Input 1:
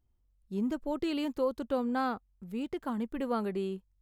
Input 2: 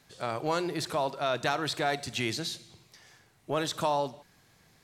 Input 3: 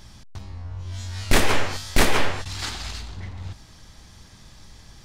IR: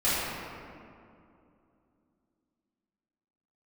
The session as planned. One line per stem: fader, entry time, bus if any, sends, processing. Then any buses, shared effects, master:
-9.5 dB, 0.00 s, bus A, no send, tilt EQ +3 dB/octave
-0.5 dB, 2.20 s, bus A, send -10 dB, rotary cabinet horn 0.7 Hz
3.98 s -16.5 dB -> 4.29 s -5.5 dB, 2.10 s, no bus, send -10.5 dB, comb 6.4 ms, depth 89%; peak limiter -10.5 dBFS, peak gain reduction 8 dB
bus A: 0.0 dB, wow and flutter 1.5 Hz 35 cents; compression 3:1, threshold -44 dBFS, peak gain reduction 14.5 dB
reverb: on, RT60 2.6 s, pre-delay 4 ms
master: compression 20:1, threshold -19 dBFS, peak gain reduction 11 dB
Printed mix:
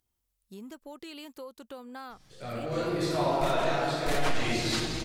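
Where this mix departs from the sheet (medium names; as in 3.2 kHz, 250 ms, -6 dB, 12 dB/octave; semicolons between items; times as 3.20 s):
stem 1 -9.5 dB -> +1.0 dB; stem 3: send off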